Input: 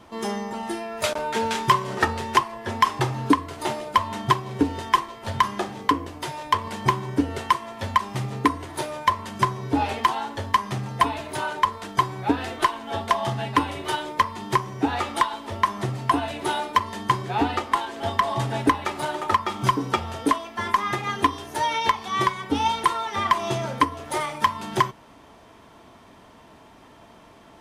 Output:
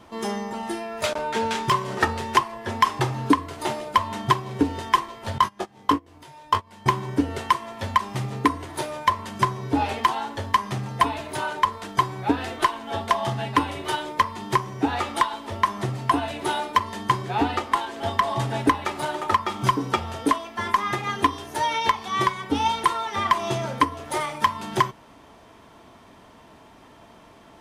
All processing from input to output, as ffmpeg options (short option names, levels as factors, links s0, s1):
-filter_complex "[0:a]asettb=1/sr,asplit=3[s0][s1][s2];[s0]atrim=end=1.014[s3];[s1]atrim=start=1.01:end=1.72,asetpts=PTS-STARTPTS,afade=t=in:d=0.004:c=qsin,afade=t=out:st=0.706:d=0.004:c=qsin,highshelf=f=11000:g=-8.5,asoftclip=type=hard:threshold=0.158[s4];[s2]atrim=start=1.716[s5];[s3][s4]acrossfade=d=0.004:c1=hsin:c2=qsin[s6];[s6][s5]acrossfade=d=0.004:c1=qsin:c2=hsin,asettb=1/sr,asplit=3[s7][s8][s9];[s7]atrim=end=5.384[s10];[s8]atrim=start=5.38:end=6.86,asetpts=PTS-STARTPTS,afade=t=in:d=0.004:c=qsin,afade=t=out:st=1.476:d=0.004:c=qsin,agate=range=0.0708:threshold=0.0562:ratio=16:release=100:detection=peak,acompressor=mode=upward:threshold=0.0141:ratio=2.5:attack=3.2:release=140:knee=2.83:detection=peak,asplit=2[s11][s12];[s12]adelay=21,volume=0.531[s13];[s11][s13]amix=inputs=2:normalize=0,atrim=end_sample=65268[s14];[s9]atrim=start=6.856[s15];[s10][s14]acrossfade=d=0.004:c1=hsin:c2=qsin[s16];[s16][s15]acrossfade=d=0.004:c1=qsin:c2=hsin"